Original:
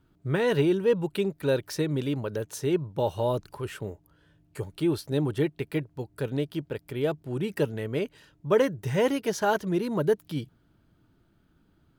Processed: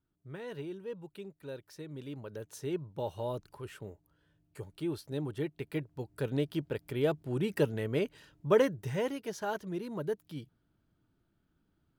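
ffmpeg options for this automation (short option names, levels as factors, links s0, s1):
-af "volume=0.794,afade=t=in:st=1.8:d=0.82:silence=0.375837,afade=t=in:st=5.39:d=1.13:silence=0.421697,afade=t=out:st=8.48:d=0.63:silence=0.375837"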